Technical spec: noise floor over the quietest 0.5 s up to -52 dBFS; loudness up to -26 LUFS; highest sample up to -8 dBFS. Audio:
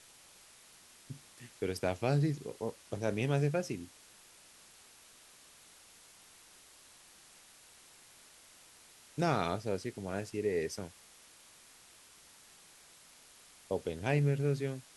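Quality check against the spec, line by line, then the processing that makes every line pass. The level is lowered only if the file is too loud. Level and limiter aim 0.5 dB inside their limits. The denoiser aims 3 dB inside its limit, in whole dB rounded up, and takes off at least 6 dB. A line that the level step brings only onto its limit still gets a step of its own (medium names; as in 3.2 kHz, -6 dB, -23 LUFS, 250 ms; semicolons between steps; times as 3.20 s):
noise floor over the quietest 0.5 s -59 dBFS: pass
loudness -34.5 LUFS: pass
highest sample -16.5 dBFS: pass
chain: none needed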